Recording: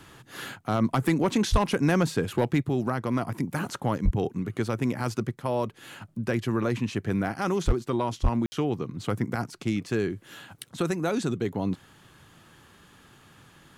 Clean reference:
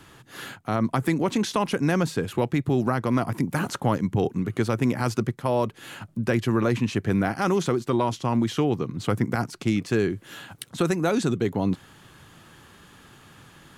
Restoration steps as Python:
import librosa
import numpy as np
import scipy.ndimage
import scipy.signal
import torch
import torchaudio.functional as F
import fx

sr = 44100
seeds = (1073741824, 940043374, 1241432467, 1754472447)

y = fx.fix_declip(x, sr, threshold_db=-14.5)
y = fx.fix_deplosive(y, sr, at_s=(1.51, 4.04, 7.66, 8.22))
y = fx.fix_ambience(y, sr, seeds[0], print_start_s=12.75, print_end_s=13.25, start_s=8.46, end_s=8.52)
y = fx.fix_level(y, sr, at_s=2.63, step_db=4.0)